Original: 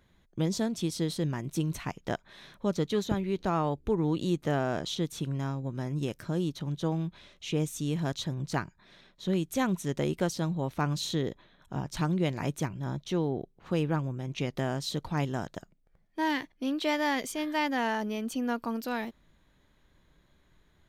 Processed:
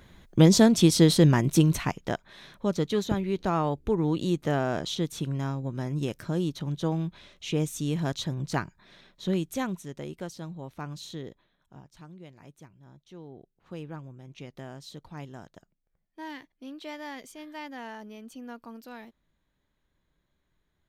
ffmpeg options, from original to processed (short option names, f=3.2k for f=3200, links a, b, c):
-af "volume=20dB,afade=t=out:st=1.37:d=0.75:silence=0.316228,afade=t=out:st=9.26:d=0.64:silence=0.298538,afade=t=out:st=11.27:d=0.67:silence=0.298538,afade=t=in:st=13.04:d=0.69:silence=0.398107"